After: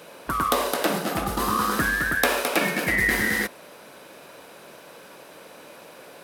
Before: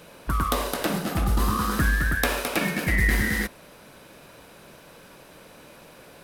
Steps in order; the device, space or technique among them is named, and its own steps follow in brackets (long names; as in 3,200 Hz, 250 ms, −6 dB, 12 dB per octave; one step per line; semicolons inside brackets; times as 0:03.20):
filter by subtraction (in parallel: low-pass filter 500 Hz 12 dB per octave + polarity inversion)
on the sum: level +2.5 dB